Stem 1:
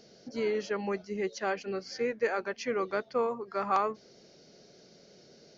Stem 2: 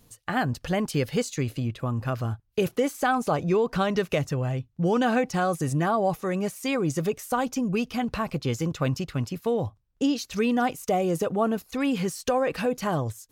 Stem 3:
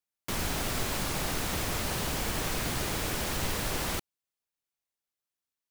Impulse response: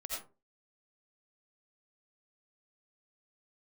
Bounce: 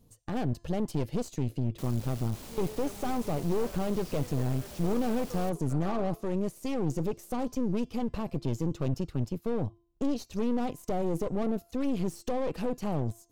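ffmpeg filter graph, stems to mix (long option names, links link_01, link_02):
-filter_complex "[0:a]adelay=2150,volume=-14.5dB,asplit=2[link_01][link_02];[link_02]volume=-3dB[link_03];[1:a]bandreject=frequency=341.7:width_type=h:width=4,bandreject=frequency=683.4:width_type=h:width=4,bandreject=frequency=1025.1:width_type=h:width=4,bandreject=frequency=1366.8:width_type=h:width=4,bandreject=frequency=1708.5:width_type=h:width=4,bandreject=frequency=2050.2:width_type=h:width=4,bandreject=frequency=2391.9:width_type=h:width=4,bandreject=frequency=2733.6:width_type=h:width=4,bandreject=frequency=3075.3:width_type=h:width=4,bandreject=frequency=3417:width_type=h:width=4,bandreject=frequency=3758.7:width_type=h:width=4,bandreject=frequency=4100.4:width_type=h:width=4,bandreject=frequency=4442.1:width_type=h:width=4,bandreject=frequency=4783.8:width_type=h:width=4,bandreject=frequency=5125.5:width_type=h:width=4,bandreject=frequency=5467.2:width_type=h:width=4,bandreject=frequency=5808.9:width_type=h:width=4,bandreject=frequency=6150.6:width_type=h:width=4,bandreject=frequency=6492.3:width_type=h:width=4,bandreject=frequency=6834:width_type=h:width=4,bandreject=frequency=7175.7:width_type=h:width=4,bandreject=frequency=7517.4:width_type=h:width=4,bandreject=frequency=7859.1:width_type=h:width=4,bandreject=frequency=8200.8:width_type=h:width=4,bandreject=frequency=8542.5:width_type=h:width=4,bandreject=frequency=8884.2:width_type=h:width=4,aeval=exprs='(tanh(22.4*val(0)+0.75)-tanh(0.75))/22.4':channel_layout=same,tiltshelf=frequency=970:gain=4.5,volume=-1.5dB[link_04];[2:a]asoftclip=type=hard:threshold=-27.5dB,adelay=1500,volume=-11.5dB[link_05];[3:a]atrim=start_sample=2205[link_06];[link_03][link_06]afir=irnorm=-1:irlink=0[link_07];[link_01][link_04][link_05][link_07]amix=inputs=4:normalize=0,equalizer=frequency=1700:width=0.93:gain=-7,aeval=exprs='clip(val(0),-1,0.0106)':channel_layout=same"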